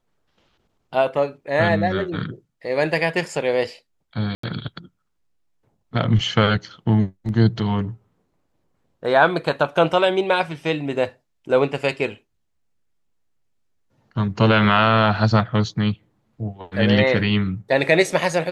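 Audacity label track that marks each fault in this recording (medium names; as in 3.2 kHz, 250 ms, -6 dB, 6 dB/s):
4.350000	4.430000	dropout 84 ms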